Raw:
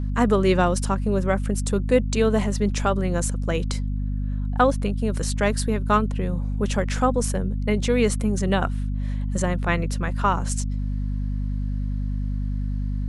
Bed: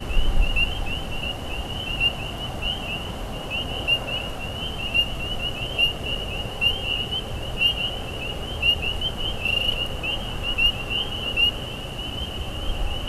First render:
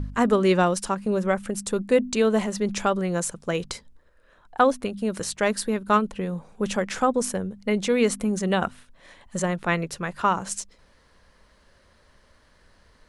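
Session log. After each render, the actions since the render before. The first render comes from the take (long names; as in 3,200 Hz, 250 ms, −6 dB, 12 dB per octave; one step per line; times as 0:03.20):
hum removal 50 Hz, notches 5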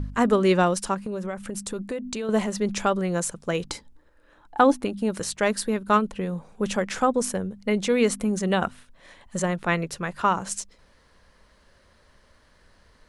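0:01.01–0:02.29: downward compressor, threshold −27 dBFS
0:03.67–0:05.11: hollow resonant body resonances 300/850 Hz, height 12 dB, ringing for 85 ms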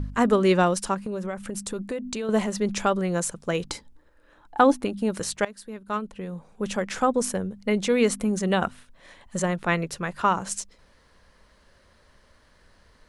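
0:05.45–0:07.18: fade in linear, from −20 dB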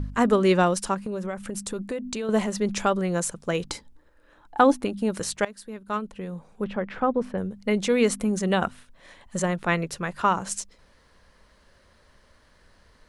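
0:06.64–0:07.38: high-frequency loss of the air 440 metres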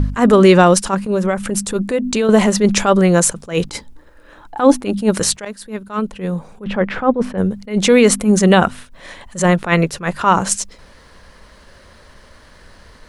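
boost into a limiter +14 dB
level that may rise only so fast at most 200 dB per second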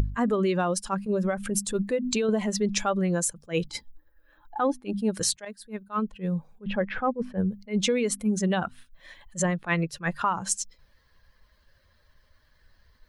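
spectral dynamics exaggerated over time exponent 1.5
downward compressor 10 to 1, threshold −22 dBFS, peak gain reduction 16 dB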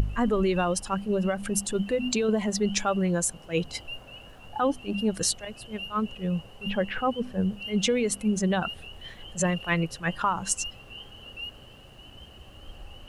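mix in bed −18 dB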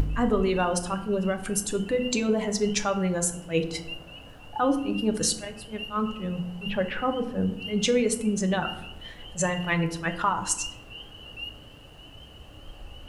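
feedback delay network reverb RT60 0.81 s, low-frequency decay 1.5×, high-frequency decay 0.5×, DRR 6 dB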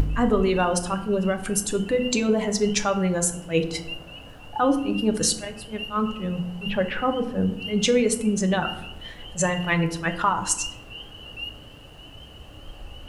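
level +3 dB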